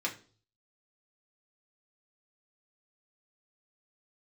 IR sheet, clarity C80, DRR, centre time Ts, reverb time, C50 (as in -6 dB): 18.0 dB, -2.0 dB, 13 ms, 0.40 s, 13.0 dB